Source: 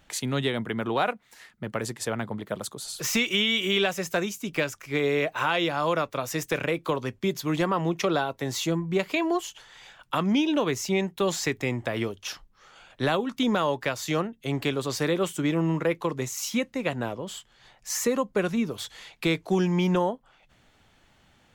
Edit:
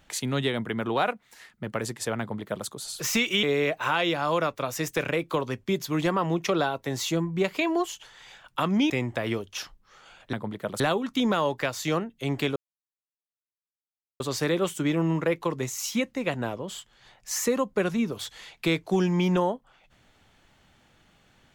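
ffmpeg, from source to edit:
ffmpeg -i in.wav -filter_complex "[0:a]asplit=6[link_01][link_02][link_03][link_04][link_05][link_06];[link_01]atrim=end=3.432[link_07];[link_02]atrim=start=4.978:end=10.452[link_08];[link_03]atrim=start=11.598:end=13.032[link_09];[link_04]atrim=start=2.198:end=2.672[link_10];[link_05]atrim=start=13.028:end=14.79,asetpts=PTS-STARTPTS,afade=type=out:start_time=1.758:duration=0.004:curve=hsin,apad=pad_dur=1.64[link_11];[link_06]atrim=start=14.79,asetpts=PTS-STARTPTS,afade=type=in:duration=0.004:curve=hsin[link_12];[link_07][link_08]acrossfade=duration=0.004:curve1=hsin:curve2=hsin[link_13];[link_13][link_09]acrossfade=duration=0.004:curve1=hsin:curve2=hsin[link_14];[link_14][link_10]acrossfade=duration=0.004:curve1=hsin:curve2=hsin[link_15];[link_11][link_12]concat=n=2:v=0:a=1[link_16];[link_15][link_16]acrossfade=duration=0.004:curve1=hsin:curve2=hsin" out.wav

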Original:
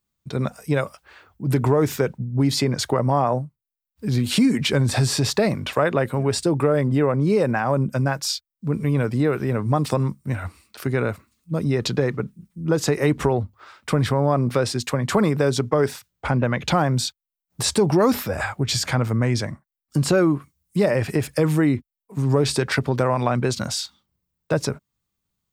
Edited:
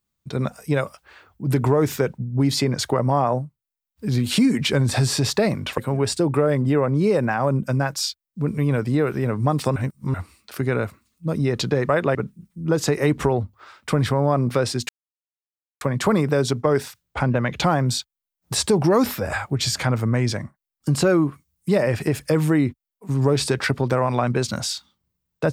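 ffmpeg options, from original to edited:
ffmpeg -i in.wav -filter_complex "[0:a]asplit=7[link_01][link_02][link_03][link_04][link_05][link_06][link_07];[link_01]atrim=end=5.782[link_08];[link_02]atrim=start=6.038:end=10.022[link_09];[link_03]atrim=start=10.018:end=10.402,asetpts=PTS-STARTPTS,areverse[link_10];[link_04]atrim=start=10.398:end=12.152[link_11];[link_05]atrim=start=5.778:end=6.042[link_12];[link_06]atrim=start=12.148:end=14.89,asetpts=PTS-STARTPTS,afade=type=out:start_time=2.738:duration=0.004:curve=hsin,apad=pad_dur=0.92[link_13];[link_07]atrim=start=14.89,asetpts=PTS-STARTPTS,afade=type=in:duration=0.004:curve=hsin[link_14];[link_08][link_09]acrossfade=duration=0.004:curve1=hsin:curve2=hsin[link_15];[link_15][link_10]acrossfade=duration=0.004:curve1=hsin:curve2=hsin[link_16];[link_16][link_11]acrossfade=duration=0.004:curve1=hsin:curve2=hsin[link_17];[link_17][link_12]acrossfade=duration=0.004:curve1=hsin:curve2=hsin[link_18];[link_13][link_14]concat=n=2:v=0:a=1[link_19];[link_18][link_19]acrossfade=duration=0.004:curve1=hsin:curve2=hsin" out.wav

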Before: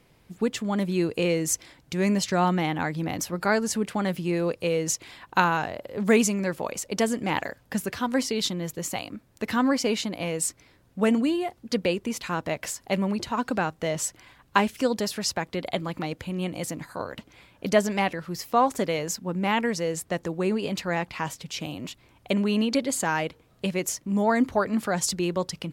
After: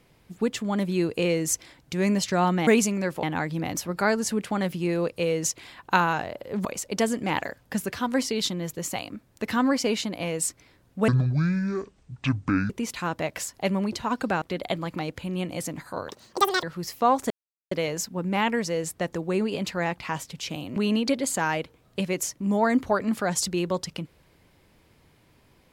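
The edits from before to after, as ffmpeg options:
ffmpeg -i in.wav -filter_complex "[0:a]asplit=11[link_01][link_02][link_03][link_04][link_05][link_06][link_07][link_08][link_09][link_10][link_11];[link_01]atrim=end=2.672[link_12];[link_02]atrim=start=6.088:end=6.652[link_13];[link_03]atrim=start=2.668:end=6.092[link_14];[link_04]atrim=start=6.648:end=11.084[link_15];[link_05]atrim=start=11.08:end=11.97,asetpts=PTS-STARTPTS,asetrate=24255,aresample=44100[link_16];[link_06]atrim=start=11.966:end=13.692[link_17];[link_07]atrim=start=15.448:end=17.124[link_18];[link_08]atrim=start=17.12:end=18.15,asetpts=PTS-STARTPTS,asetrate=83349,aresample=44100,atrim=end_sample=24033,asetpts=PTS-STARTPTS[link_19];[link_09]atrim=start=18.146:end=18.82,asetpts=PTS-STARTPTS,afade=type=out:start_time=0.67:duration=0.004:curve=hsin,apad=pad_dur=0.41[link_20];[link_10]atrim=start=18.82:end=21.872,asetpts=PTS-STARTPTS,afade=type=in:duration=0.004:curve=hsin[link_21];[link_11]atrim=start=22.418[link_22];[link_12][link_13]acrossfade=duration=0.004:curve1=hsin:curve2=hsin[link_23];[link_23][link_14]acrossfade=duration=0.004:curve1=hsin:curve2=hsin[link_24];[link_24][link_15]acrossfade=duration=0.004:curve1=hsin:curve2=hsin[link_25];[link_25][link_16]acrossfade=duration=0.004:curve1=hsin:curve2=hsin[link_26];[link_26][link_17]acrossfade=duration=0.004:curve1=hsin:curve2=hsin[link_27];[link_27][link_18]acrossfade=duration=0.004:curve1=hsin:curve2=hsin[link_28];[link_28][link_19]acrossfade=duration=0.004:curve1=hsin:curve2=hsin[link_29];[link_20][link_21]concat=n=2:v=0:a=1[link_30];[link_29][link_30]acrossfade=duration=0.004:curve1=hsin:curve2=hsin[link_31];[link_31][link_22]acrossfade=duration=0.004:curve1=hsin:curve2=hsin" out.wav

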